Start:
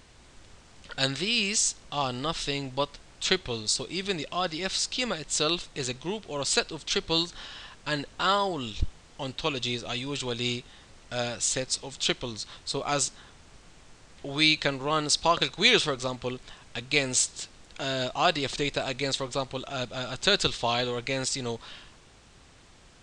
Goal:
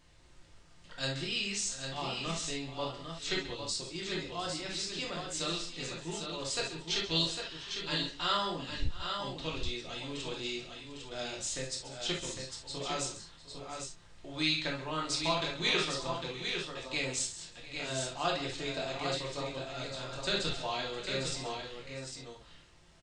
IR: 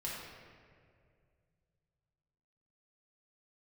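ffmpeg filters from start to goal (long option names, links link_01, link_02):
-filter_complex "[0:a]asettb=1/sr,asplit=3[link_01][link_02][link_03];[link_01]atrim=end=6.894[link_04];[link_02]atrim=start=6.89:end=8.48,asetpts=PTS-STARTPTS,afade=type=in:duration=0.004:curve=qsin,afade=type=out:start_time=1.586:duration=0.004:curve=qsin,equalizer=frequency=3600:width_type=o:width=1.9:gain=6[link_05];[link_03]atrim=start=8.476[link_06];[link_04][link_05]acrossfade=duration=0.004:curve1=hsin:curve2=qsin[link_07];[link_07][link_06]acrossfade=duration=0.004:curve1=qsin:curve2=hsin,aecho=1:1:134|705|803:0.211|0.141|0.501[link_08];[1:a]atrim=start_sample=2205,atrim=end_sample=3528[link_09];[link_08][link_09]afir=irnorm=-1:irlink=0,volume=-7.5dB"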